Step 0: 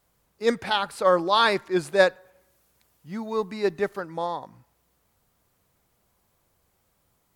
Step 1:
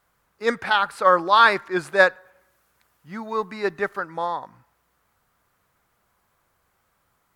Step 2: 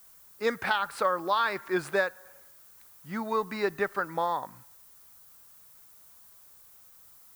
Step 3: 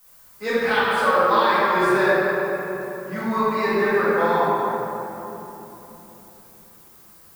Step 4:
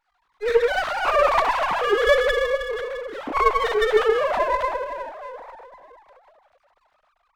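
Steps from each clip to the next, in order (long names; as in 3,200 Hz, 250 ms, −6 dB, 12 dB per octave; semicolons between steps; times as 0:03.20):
parametric band 1,400 Hz +11 dB 1.5 octaves; level −2.5 dB
downward compressor 10 to 1, threshold −23 dBFS, peak gain reduction 14 dB; background noise violet −55 dBFS
rectangular room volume 220 cubic metres, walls hard, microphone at 2 metres; level −2.5 dB
three sine waves on the formant tracks; windowed peak hold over 9 samples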